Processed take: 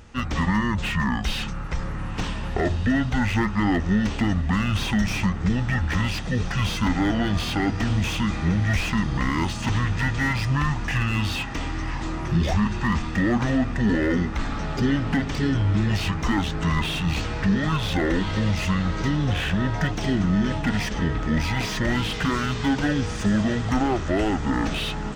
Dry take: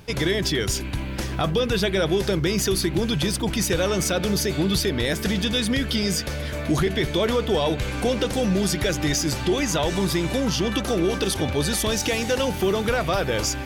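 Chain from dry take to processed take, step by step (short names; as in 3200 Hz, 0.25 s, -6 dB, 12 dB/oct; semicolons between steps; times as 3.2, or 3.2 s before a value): wide varispeed 0.543×; diffused feedback echo 1.534 s, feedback 47%, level -15.5 dB; slew limiter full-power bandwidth 130 Hz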